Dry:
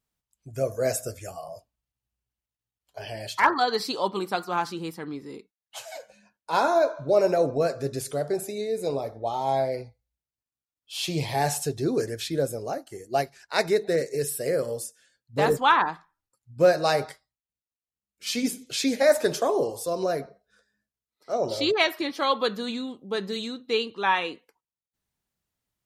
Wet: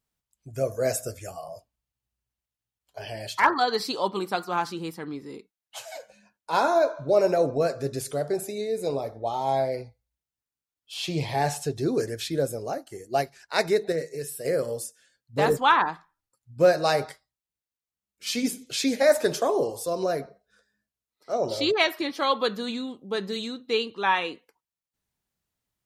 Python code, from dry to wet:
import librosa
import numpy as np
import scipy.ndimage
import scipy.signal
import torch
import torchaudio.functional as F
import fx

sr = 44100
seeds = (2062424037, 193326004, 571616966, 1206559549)

y = fx.high_shelf(x, sr, hz=7300.0, db=-9.5, at=(10.94, 11.76))
y = fx.comb_fb(y, sr, f0_hz=160.0, decay_s=0.22, harmonics='all', damping=0.0, mix_pct=60, at=(13.92, 14.45))